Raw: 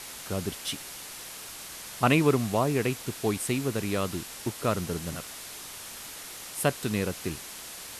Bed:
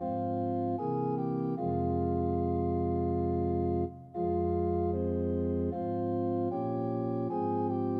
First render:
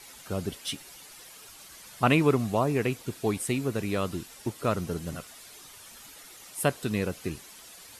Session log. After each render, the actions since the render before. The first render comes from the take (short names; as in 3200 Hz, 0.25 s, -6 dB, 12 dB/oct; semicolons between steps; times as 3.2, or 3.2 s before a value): denoiser 10 dB, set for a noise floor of -42 dBFS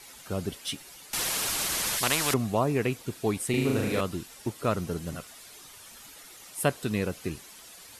1.13–2.34 spectral compressor 4:1; 3.5–4.01 flutter echo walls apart 6.5 m, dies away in 1 s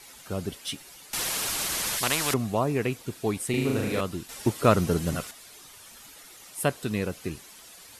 4.29–5.31 gain +7.5 dB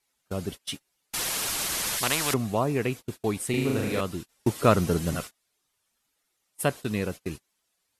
gate -35 dBFS, range -28 dB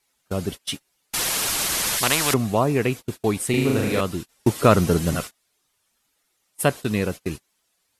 gain +5.5 dB; limiter -3 dBFS, peak gain reduction 2 dB